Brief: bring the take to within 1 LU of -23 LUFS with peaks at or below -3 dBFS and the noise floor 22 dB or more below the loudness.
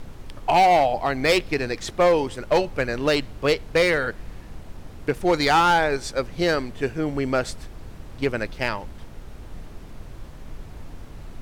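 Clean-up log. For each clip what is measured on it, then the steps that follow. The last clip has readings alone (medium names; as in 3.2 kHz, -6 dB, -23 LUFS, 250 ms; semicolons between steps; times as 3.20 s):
clipped samples 1.0%; clipping level -12.5 dBFS; noise floor -41 dBFS; noise floor target -45 dBFS; loudness -22.5 LUFS; peak level -12.5 dBFS; loudness target -23.0 LUFS
-> clip repair -12.5 dBFS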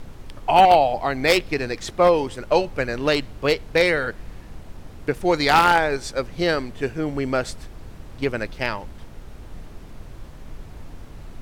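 clipped samples 0.0%; noise floor -41 dBFS; noise floor target -43 dBFS
-> noise print and reduce 6 dB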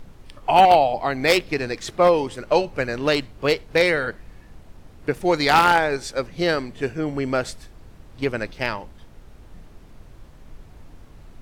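noise floor -46 dBFS; loudness -21.0 LUFS; peak level -3.5 dBFS; loudness target -23.0 LUFS
-> trim -2 dB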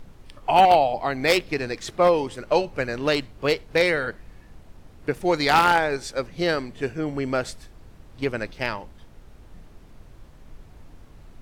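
loudness -23.0 LUFS; peak level -5.5 dBFS; noise floor -48 dBFS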